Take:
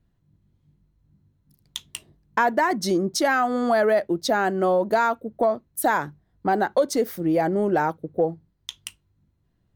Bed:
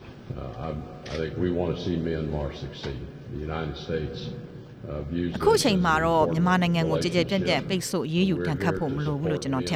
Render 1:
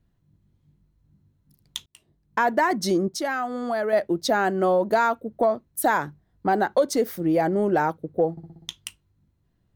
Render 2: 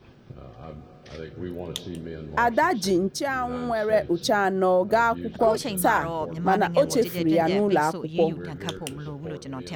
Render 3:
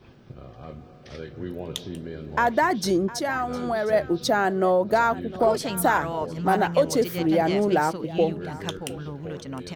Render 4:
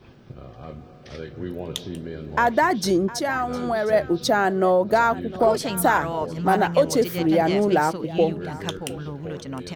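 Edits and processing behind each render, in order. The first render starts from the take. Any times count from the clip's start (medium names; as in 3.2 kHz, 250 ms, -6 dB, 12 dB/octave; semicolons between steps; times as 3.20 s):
1.86–2.52 s: fade in; 3.08–3.93 s: gain -6 dB; 8.31–8.73 s: flutter echo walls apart 10.6 m, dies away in 1.3 s
add bed -8 dB
delay 708 ms -18 dB
trim +2 dB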